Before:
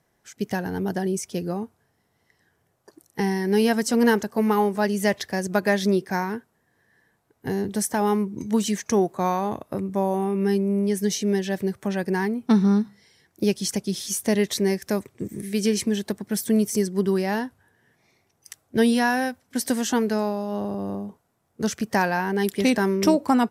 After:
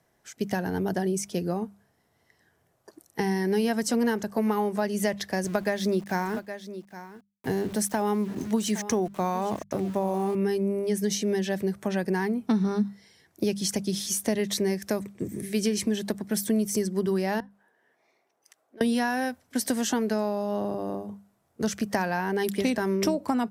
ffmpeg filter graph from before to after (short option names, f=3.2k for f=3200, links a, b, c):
-filter_complex "[0:a]asettb=1/sr,asplit=3[a][b][c];[a]atrim=end=5.444[d];[b]atrim=start=5.44:end=10.35,asetpts=PTS-STARTPTS,afade=t=in:d=0.004:c=qsin,afade=t=out:st=4.906:d=0.004:c=qsin,highpass=f=42:w=0.5412,highpass=f=42:w=1.3066,aeval=exprs='val(0)*gte(abs(val(0)),0.01)':c=same,aecho=1:1:814:0.141,atrim=end_sample=216531[e];[c]atrim=start=10.346[f];[d][e]acrossfade=d=0.004:c1=hsin:c2=qsin[g];[g][f]acrossfade=d=0.004:c1=qsin:c2=hsin,asettb=1/sr,asplit=3[h][i][j];[h]atrim=end=17.404[k];[i]atrim=start=17.4:end=18.81,asetpts=PTS-STARTPTS,afade=t=in:d=0.004:c=qsin,afade=t=out:st=1.406:d=0.004:c=qsin,highpass=420,highshelf=f=2.4k:g=-11,acompressor=threshold=-53dB:ratio=3:attack=3.2:release=140:knee=1:detection=peak[l];[j]atrim=start=18.806[m];[k][l]acrossfade=d=0.004:c1=hsin:c2=qsin[n];[n][m]acrossfade=d=0.004:c1=qsin:c2=hsin,equalizer=f=640:w=6.1:g=3.5,bandreject=f=50:t=h:w=6,bandreject=f=100:t=h:w=6,bandreject=f=150:t=h:w=6,bandreject=f=200:t=h:w=6,acrossover=split=150[o][p];[p]acompressor=threshold=-23dB:ratio=6[q];[o][q]amix=inputs=2:normalize=0"